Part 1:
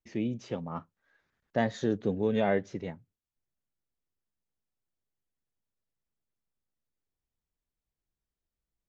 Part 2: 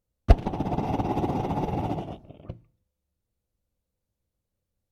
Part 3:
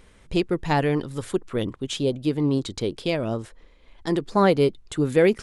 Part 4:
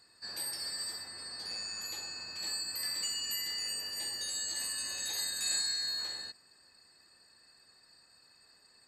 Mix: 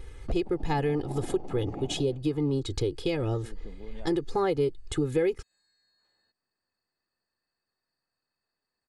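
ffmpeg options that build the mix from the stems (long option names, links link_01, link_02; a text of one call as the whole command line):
ffmpeg -i stem1.wav -i stem2.wav -i stem3.wav -i stem4.wav -filter_complex "[0:a]acompressor=threshold=-35dB:ratio=3,adelay=1600,volume=-10dB[link_01];[1:a]equalizer=frequency=360:width=0.38:gain=14,alimiter=limit=-3.5dB:level=0:latency=1:release=447,volume=-17.5dB[link_02];[2:a]lowshelf=frequency=270:gain=9.5,aecho=1:1:2.4:0.9,volume=-1.5dB[link_03];[3:a]acompressor=threshold=-47dB:ratio=4,lowpass=frequency=1600:poles=1,volume=-17dB[link_04];[link_01][link_02][link_03][link_04]amix=inputs=4:normalize=0,acompressor=threshold=-27dB:ratio=3" out.wav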